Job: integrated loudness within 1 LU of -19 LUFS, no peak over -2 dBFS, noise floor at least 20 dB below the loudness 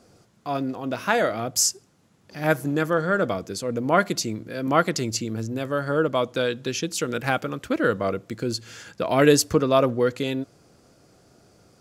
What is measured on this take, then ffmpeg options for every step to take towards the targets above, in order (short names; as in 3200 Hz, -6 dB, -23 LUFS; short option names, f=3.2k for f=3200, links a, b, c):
loudness -24.0 LUFS; peak -3.5 dBFS; loudness target -19.0 LUFS
-> -af "volume=5dB,alimiter=limit=-2dB:level=0:latency=1"